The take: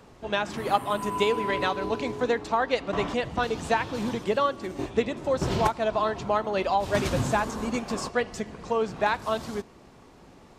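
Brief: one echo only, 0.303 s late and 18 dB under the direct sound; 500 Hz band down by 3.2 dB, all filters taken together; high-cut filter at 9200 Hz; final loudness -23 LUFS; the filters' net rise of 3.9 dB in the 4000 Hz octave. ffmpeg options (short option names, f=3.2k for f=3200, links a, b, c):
-af "lowpass=9.2k,equalizer=f=500:t=o:g=-4,equalizer=f=4k:t=o:g=5,aecho=1:1:303:0.126,volume=5.5dB"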